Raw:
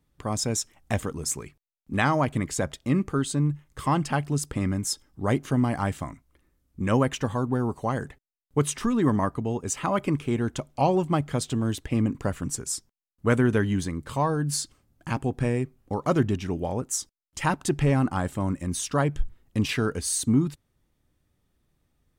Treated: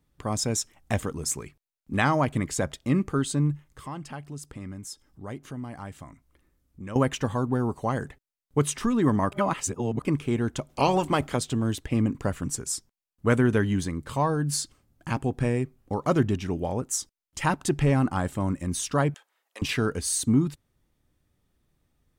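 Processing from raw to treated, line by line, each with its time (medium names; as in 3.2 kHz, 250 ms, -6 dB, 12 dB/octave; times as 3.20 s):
3.69–6.96 s: compression 1.5:1, threshold -56 dBFS
9.32–10.05 s: reverse
10.68–11.35 s: spectral peaks clipped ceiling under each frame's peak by 15 dB
19.14–19.62 s: high-pass 610 Hz 24 dB/octave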